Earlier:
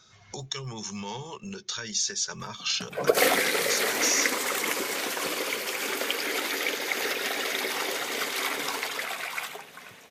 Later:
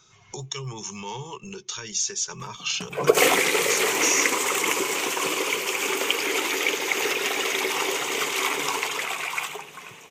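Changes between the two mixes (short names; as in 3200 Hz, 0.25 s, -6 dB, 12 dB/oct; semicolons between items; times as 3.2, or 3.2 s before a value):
background +3.5 dB; master: add ripple EQ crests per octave 0.71, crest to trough 8 dB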